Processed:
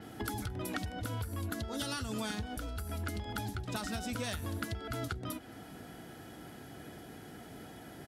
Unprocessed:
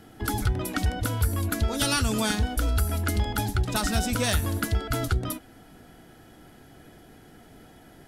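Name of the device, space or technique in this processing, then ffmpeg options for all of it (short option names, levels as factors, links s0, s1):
serial compression, peaks first: -filter_complex "[0:a]acompressor=threshold=0.0316:ratio=6,acompressor=threshold=0.0112:ratio=2,highpass=74,asettb=1/sr,asplit=3[s0][s1][s2];[s0]atrim=end=1.494[s3];[s1]atrim=start=1.49:end=2.12,asetpts=PTS-STARTPTS,afade=t=in:d=0.004:c=qsin,afade=t=out:st=0.626:d=0.004:c=qsin,bandreject=f=2400:w=6.4[s4];[s2]atrim=start=2.116[s5];[s3][s4]acrossfade=d=0.004:c1=hsin:c2=qsin[s6];[s6][s5]acrossfade=d=0.004:c1=qsin:c2=hsin,asplit=2[s7][s8];[s8]adelay=221.6,volume=0.0708,highshelf=f=4000:g=-4.99[s9];[s7][s9]amix=inputs=2:normalize=0,adynamicequalizer=threshold=0.001:dfrequency=6200:dqfactor=0.7:tfrequency=6200:tqfactor=0.7:attack=5:release=100:ratio=0.375:range=2:mode=cutabove:tftype=highshelf,volume=1.26"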